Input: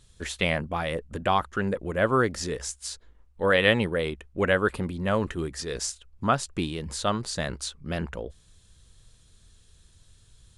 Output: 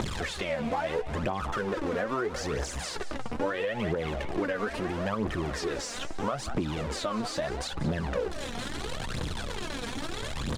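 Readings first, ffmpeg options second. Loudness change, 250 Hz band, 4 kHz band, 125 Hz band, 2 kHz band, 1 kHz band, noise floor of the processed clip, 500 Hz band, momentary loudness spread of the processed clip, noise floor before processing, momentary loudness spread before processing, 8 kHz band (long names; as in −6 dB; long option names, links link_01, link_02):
−5.0 dB, −2.0 dB, −3.5 dB, −2.5 dB, −6.0 dB, −4.0 dB, −37 dBFS, −3.5 dB, 5 LU, −58 dBFS, 11 LU, −4.5 dB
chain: -filter_complex "[0:a]aeval=exprs='val(0)+0.5*0.0668*sgn(val(0))':channel_layout=same,lowpass=7700,asplit=2[link_01][link_02];[link_02]adelay=14,volume=-11.5dB[link_03];[link_01][link_03]amix=inputs=2:normalize=0,aphaser=in_gain=1:out_gain=1:delay=4.4:decay=0.65:speed=0.76:type=triangular,lowshelf=frequency=150:gain=-11.5,acrossover=split=130|3600[link_04][link_05][link_06];[link_05]acompressor=mode=upward:threshold=-24dB:ratio=2.5[link_07];[link_04][link_07][link_06]amix=inputs=3:normalize=0,asplit=6[link_08][link_09][link_10][link_11][link_12][link_13];[link_09]adelay=186,afreqshift=110,volume=-17dB[link_14];[link_10]adelay=372,afreqshift=220,volume=-22.5dB[link_15];[link_11]adelay=558,afreqshift=330,volume=-28dB[link_16];[link_12]adelay=744,afreqshift=440,volume=-33.5dB[link_17];[link_13]adelay=930,afreqshift=550,volume=-39.1dB[link_18];[link_08][link_14][link_15][link_16][link_17][link_18]amix=inputs=6:normalize=0,alimiter=limit=-11.5dB:level=0:latency=1:release=136,acompressor=threshold=-23dB:ratio=6,highshelf=frequency=2100:gain=-11,volume=-1.5dB"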